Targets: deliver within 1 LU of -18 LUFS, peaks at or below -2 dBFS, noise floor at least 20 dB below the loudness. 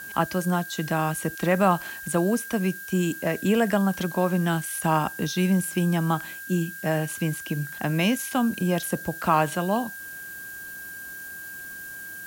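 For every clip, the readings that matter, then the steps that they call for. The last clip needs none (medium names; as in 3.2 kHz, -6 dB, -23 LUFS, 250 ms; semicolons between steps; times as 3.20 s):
steady tone 1.6 kHz; tone level -37 dBFS; noise floor -39 dBFS; noise floor target -45 dBFS; loudness -25.0 LUFS; peak level -8.5 dBFS; loudness target -18.0 LUFS
-> band-stop 1.6 kHz, Q 30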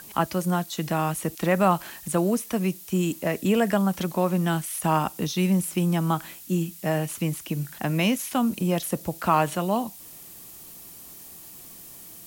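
steady tone not found; noise floor -45 dBFS; noise floor target -46 dBFS
-> noise reduction 6 dB, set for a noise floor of -45 dBFS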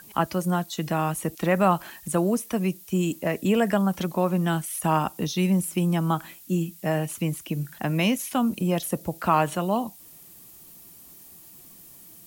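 noise floor -49 dBFS; loudness -25.5 LUFS; peak level -8.5 dBFS; loudness target -18.0 LUFS
-> trim +7.5 dB; peak limiter -2 dBFS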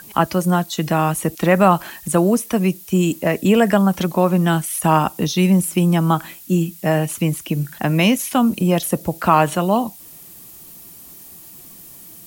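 loudness -18.0 LUFS; peak level -2.0 dBFS; noise floor -41 dBFS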